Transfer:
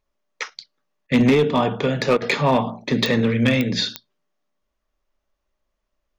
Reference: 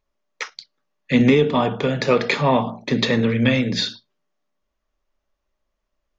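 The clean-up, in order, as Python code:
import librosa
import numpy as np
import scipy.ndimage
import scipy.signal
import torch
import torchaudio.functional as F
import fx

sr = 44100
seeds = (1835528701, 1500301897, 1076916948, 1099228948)

y = fx.fix_declip(x, sr, threshold_db=-10.5)
y = fx.fix_declick_ar(y, sr, threshold=10.0)
y = fx.fix_interpolate(y, sr, at_s=(1.07, 2.17), length_ms=46.0)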